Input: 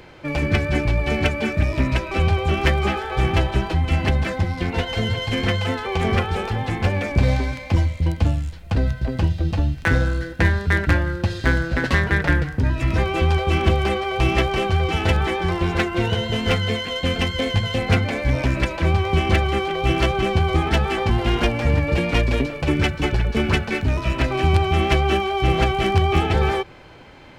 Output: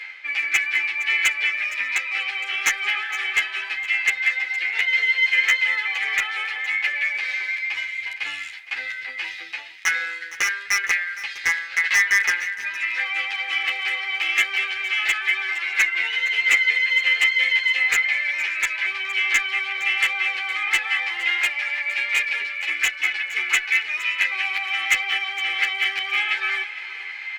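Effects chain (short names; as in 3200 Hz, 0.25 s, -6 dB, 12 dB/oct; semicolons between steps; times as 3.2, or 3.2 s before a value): resonant high-pass 2100 Hz, resonance Q 4.8; high shelf 6800 Hz -11.5 dB; reverse; upward compressor, threshold -24 dBFS; reverse; wavefolder -10 dBFS; comb 2.4 ms, depth 41%; echo 0.463 s -16 dB; endless flanger 10.5 ms -0.26 Hz; gain +2.5 dB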